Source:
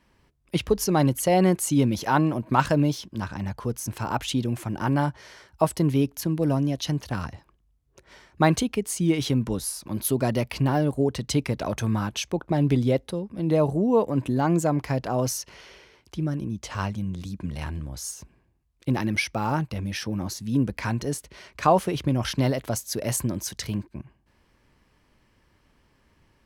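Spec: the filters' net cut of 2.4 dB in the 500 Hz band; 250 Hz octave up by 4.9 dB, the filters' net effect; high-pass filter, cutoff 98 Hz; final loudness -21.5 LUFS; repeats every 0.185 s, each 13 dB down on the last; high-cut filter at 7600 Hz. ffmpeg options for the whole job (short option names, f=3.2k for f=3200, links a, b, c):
-af "highpass=98,lowpass=7.6k,equalizer=f=250:t=o:g=8,equalizer=f=500:t=o:g=-6,aecho=1:1:185|370|555:0.224|0.0493|0.0108,volume=1.5dB"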